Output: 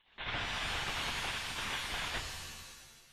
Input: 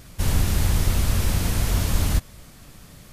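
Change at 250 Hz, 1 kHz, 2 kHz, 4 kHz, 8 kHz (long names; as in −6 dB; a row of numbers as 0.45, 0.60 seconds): −20.5, −5.0, −1.5, −3.5, −14.0 decibels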